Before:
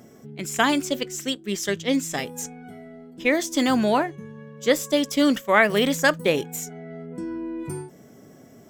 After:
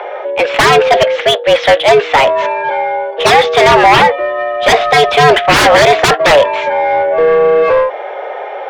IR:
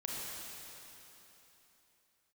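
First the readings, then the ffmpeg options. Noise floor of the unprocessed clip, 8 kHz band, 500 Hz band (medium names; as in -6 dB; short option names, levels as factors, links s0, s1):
-49 dBFS, +6.5 dB, +17.0 dB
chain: -filter_complex "[0:a]highpass=f=360:t=q:w=0.5412,highpass=f=360:t=q:w=1.307,lowpass=f=3400:t=q:w=0.5176,lowpass=f=3400:t=q:w=0.7071,lowpass=f=3400:t=q:w=1.932,afreqshift=150,aeval=exprs='0.668*sin(PI/2*8.91*val(0)/0.668)':c=same,asplit=2[s0][s1];[s1]highpass=f=720:p=1,volume=5.62,asoftclip=type=tanh:threshold=0.668[s2];[s0][s2]amix=inputs=2:normalize=0,lowpass=f=1600:p=1,volume=0.501,volume=1.33"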